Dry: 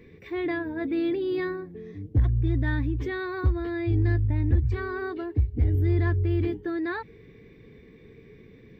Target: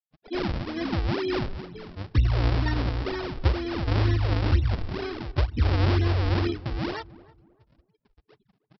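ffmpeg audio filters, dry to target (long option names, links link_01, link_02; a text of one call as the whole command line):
ffmpeg -i in.wav -filter_complex "[0:a]afftdn=noise_reduction=28:noise_floor=-35,afftfilt=real='re*gte(hypot(re,im),0.01)':imag='im*gte(hypot(re,im),0.01)':win_size=1024:overlap=0.75,adynamicequalizer=threshold=0.00355:dfrequency=1900:dqfactor=0.75:tfrequency=1900:tqfactor=0.75:attack=5:release=100:ratio=0.375:range=1.5:mode=cutabove:tftype=bell,aexciter=amount=4.3:drive=3.1:freq=2200,aresample=11025,acrusher=samples=16:mix=1:aa=0.000001:lfo=1:lforange=25.6:lforate=2.1,aresample=44100,asplit=2[link_01][link_02];[link_02]adelay=311,lowpass=frequency=990:poles=1,volume=-19dB,asplit=2[link_03][link_04];[link_04]adelay=311,lowpass=frequency=990:poles=1,volume=0.33,asplit=2[link_05][link_06];[link_06]adelay=311,lowpass=frequency=990:poles=1,volume=0.33[link_07];[link_01][link_03][link_05][link_07]amix=inputs=4:normalize=0,asplit=2[link_08][link_09];[link_09]asetrate=33038,aresample=44100,atempo=1.33484,volume=-11dB[link_10];[link_08][link_10]amix=inputs=2:normalize=0" out.wav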